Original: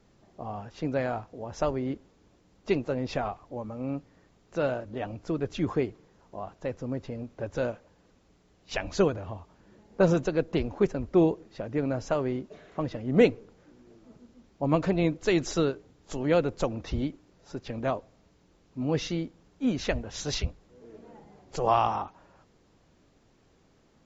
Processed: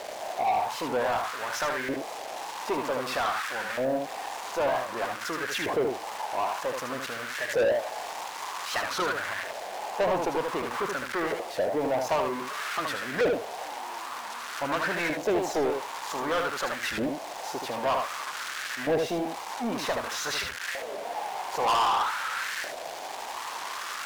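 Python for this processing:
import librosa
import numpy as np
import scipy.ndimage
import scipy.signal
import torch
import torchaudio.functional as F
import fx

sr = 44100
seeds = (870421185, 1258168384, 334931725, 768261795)

p1 = x + 0.5 * 10.0 ** (-18.0 / 20.0) * np.diff(np.sign(x), prepend=np.sign(x[:1]))
p2 = fx.leveller(p1, sr, passes=2)
p3 = fx.filter_lfo_bandpass(p2, sr, shape='saw_up', hz=0.53, low_hz=610.0, high_hz=1700.0, q=4.1)
p4 = 10.0 ** (-26.0 / 20.0) * np.tanh(p3 / 10.0 ** (-26.0 / 20.0))
p5 = p4 + fx.echo_single(p4, sr, ms=76, db=-6.0, dry=0)
p6 = fx.leveller(p5, sr, passes=2)
p7 = fx.quant_dither(p6, sr, seeds[0], bits=8, dither='none')
p8 = p6 + (p7 * 10.0 ** (-5.0 / 20.0))
p9 = fx.peak_eq(p8, sr, hz=1300.0, db=-5.0, octaves=0.3)
y = fx.record_warp(p9, sr, rpm=45.0, depth_cents=160.0)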